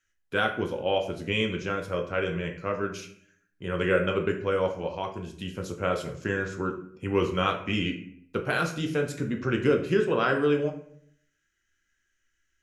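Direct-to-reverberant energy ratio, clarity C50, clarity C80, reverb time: 3.0 dB, 9.0 dB, 13.0 dB, 0.60 s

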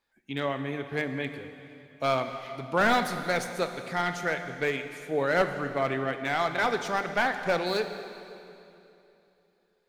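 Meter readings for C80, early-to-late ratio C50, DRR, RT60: 9.0 dB, 8.5 dB, 7.5 dB, 2.9 s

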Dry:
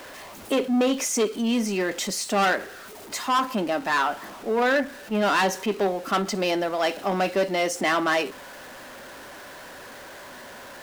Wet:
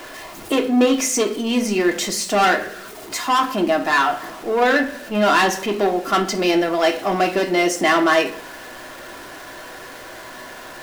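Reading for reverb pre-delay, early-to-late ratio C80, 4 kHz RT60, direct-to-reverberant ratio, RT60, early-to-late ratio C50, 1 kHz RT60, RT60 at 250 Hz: 3 ms, 16.5 dB, 0.40 s, 3.5 dB, 0.60 s, 12.5 dB, 0.50 s, 0.70 s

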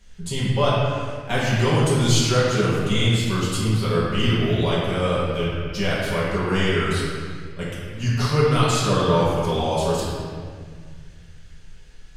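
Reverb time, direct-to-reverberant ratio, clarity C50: 1.9 s, -9.0 dB, -2.5 dB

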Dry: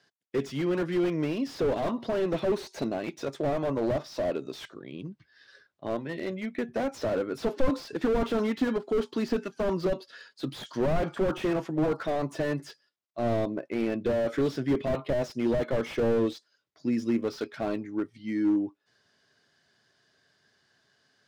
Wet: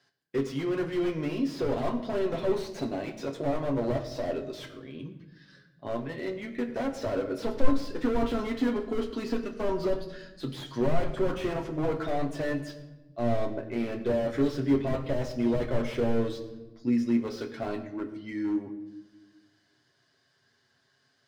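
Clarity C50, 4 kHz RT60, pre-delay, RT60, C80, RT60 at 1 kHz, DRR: 11.0 dB, 0.80 s, 7 ms, 1.1 s, 12.5 dB, 0.95 s, 1.5 dB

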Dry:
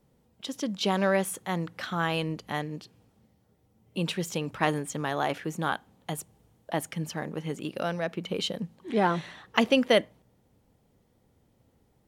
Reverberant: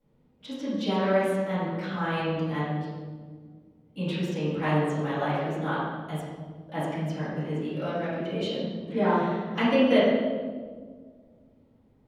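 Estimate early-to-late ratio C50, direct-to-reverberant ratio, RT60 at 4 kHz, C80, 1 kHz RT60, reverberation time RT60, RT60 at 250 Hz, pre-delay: -2.0 dB, -14.0 dB, 1.0 s, 0.5 dB, 1.3 s, 1.7 s, 2.4 s, 4 ms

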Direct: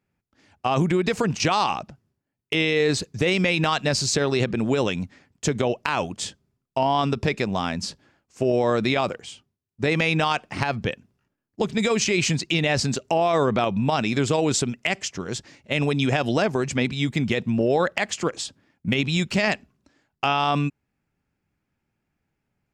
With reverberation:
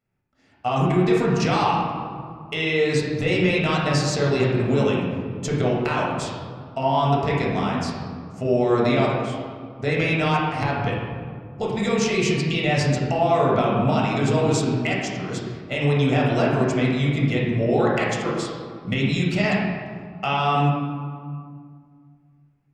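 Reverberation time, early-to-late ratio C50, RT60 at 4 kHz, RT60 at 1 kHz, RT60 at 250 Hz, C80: 2.1 s, 0.0 dB, 1.1 s, 2.0 s, 2.6 s, 2.5 dB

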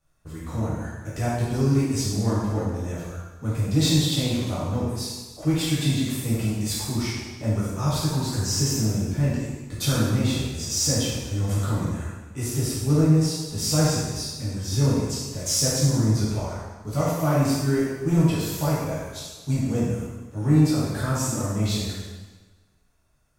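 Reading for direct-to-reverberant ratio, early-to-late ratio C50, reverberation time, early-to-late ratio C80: -9.0 dB, -2.0 dB, 1.3 s, 1.0 dB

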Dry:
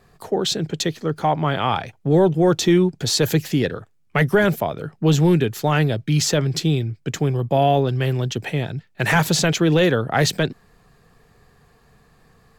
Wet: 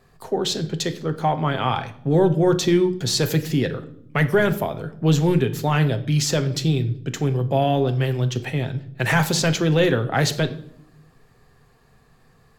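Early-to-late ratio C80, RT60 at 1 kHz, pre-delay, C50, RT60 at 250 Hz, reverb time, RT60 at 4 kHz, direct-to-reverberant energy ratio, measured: 17.5 dB, 0.60 s, 8 ms, 14.5 dB, 1.3 s, 0.70 s, 0.55 s, 8.5 dB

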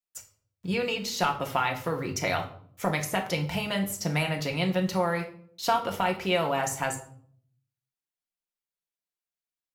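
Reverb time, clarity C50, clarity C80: 0.55 s, 11.0 dB, 15.0 dB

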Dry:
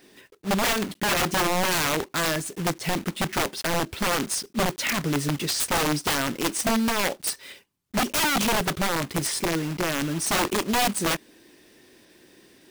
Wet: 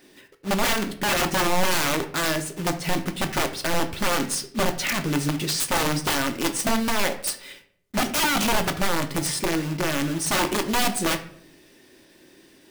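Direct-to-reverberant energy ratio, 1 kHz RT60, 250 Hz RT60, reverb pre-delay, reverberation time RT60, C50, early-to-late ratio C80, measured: 7.0 dB, 0.55 s, 0.90 s, 3 ms, 0.65 s, 13.0 dB, 16.0 dB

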